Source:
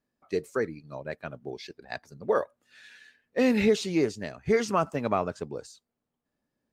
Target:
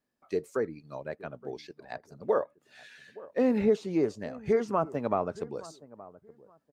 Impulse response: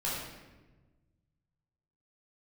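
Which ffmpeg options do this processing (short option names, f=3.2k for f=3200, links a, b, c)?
-filter_complex "[0:a]lowshelf=f=210:g=-5.5,acrossover=split=1300[a][b];[a]aecho=1:1:871|1742:0.112|0.0224[c];[b]acompressor=threshold=-48dB:ratio=10[d];[c][d]amix=inputs=2:normalize=0"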